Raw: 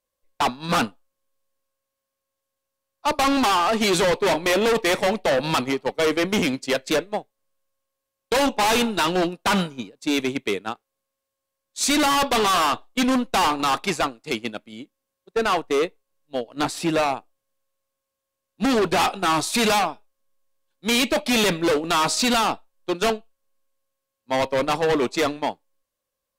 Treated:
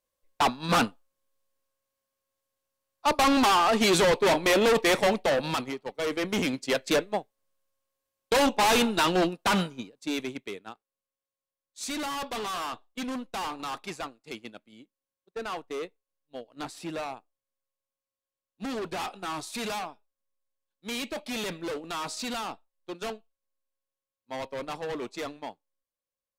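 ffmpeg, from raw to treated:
ffmpeg -i in.wav -af "volume=8dB,afade=type=out:start_time=5.07:duration=0.73:silence=0.298538,afade=type=in:start_time=5.8:duration=1.17:silence=0.316228,afade=type=out:start_time=9.25:duration=1.27:silence=0.281838" out.wav

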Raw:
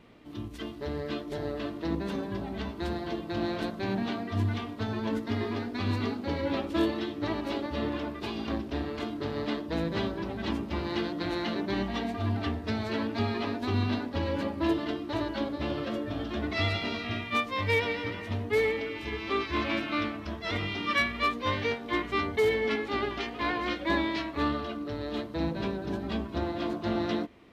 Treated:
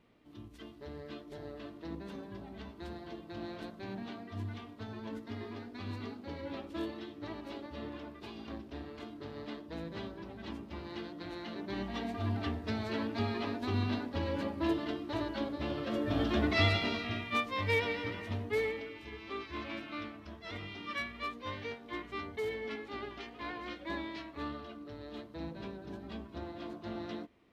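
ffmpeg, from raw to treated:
ffmpeg -i in.wav -af "volume=3.5dB,afade=type=in:start_time=11.47:duration=0.72:silence=0.446684,afade=type=in:start_time=15.84:duration=0.39:silence=0.398107,afade=type=out:start_time=16.23:duration=0.91:silence=0.421697,afade=type=out:start_time=18.25:duration=0.77:silence=0.421697" out.wav

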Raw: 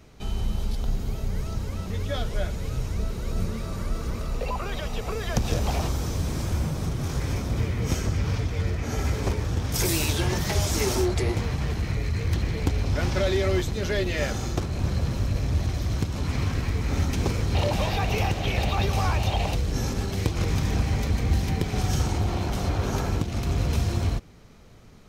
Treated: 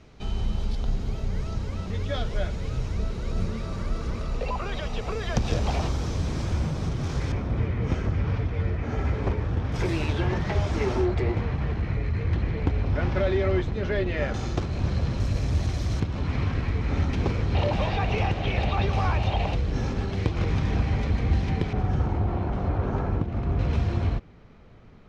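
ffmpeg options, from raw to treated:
ffmpeg -i in.wav -af "asetnsamples=nb_out_samples=441:pad=0,asendcmd='7.32 lowpass f 2300;14.34 lowpass f 4600;15.2 lowpass f 8200;16 lowpass f 3200;21.73 lowpass f 1500;23.59 lowpass f 2700',lowpass=5300" out.wav

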